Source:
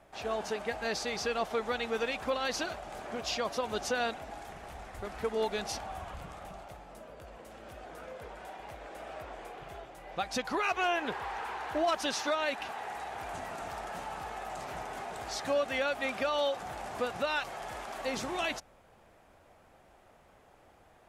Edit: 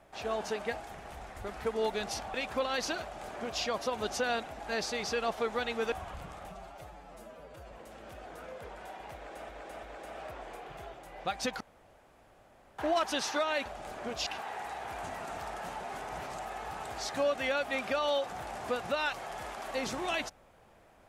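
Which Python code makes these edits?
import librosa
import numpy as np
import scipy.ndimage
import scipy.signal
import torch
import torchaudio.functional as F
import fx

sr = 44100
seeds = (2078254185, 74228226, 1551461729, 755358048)

y = fx.edit(x, sr, fx.swap(start_s=0.8, length_s=1.25, other_s=4.38, other_length_s=1.54),
    fx.duplicate(start_s=2.73, length_s=0.61, to_s=12.57),
    fx.stretch_span(start_s=6.5, length_s=0.81, factor=1.5),
    fx.repeat(start_s=8.75, length_s=0.34, count=3),
    fx.room_tone_fill(start_s=10.52, length_s=1.18),
    fx.reverse_span(start_s=14.11, length_s=1.03), tone=tone)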